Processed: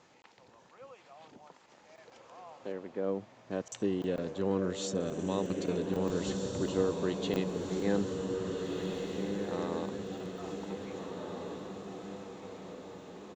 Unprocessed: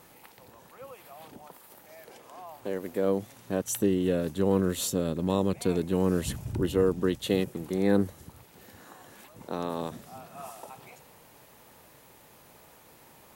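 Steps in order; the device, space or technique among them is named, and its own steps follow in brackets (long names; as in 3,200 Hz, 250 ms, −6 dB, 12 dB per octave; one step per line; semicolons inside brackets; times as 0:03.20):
call with lost packets (high-pass filter 140 Hz 6 dB per octave; downsampling to 16,000 Hz; dropped packets random)
0:02.72–0:03.51: high-frequency loss of the air 370 metres
feedback delay with all-pass diffusion 1,667 ms, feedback 53%, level −3 dB
level −5.5 dB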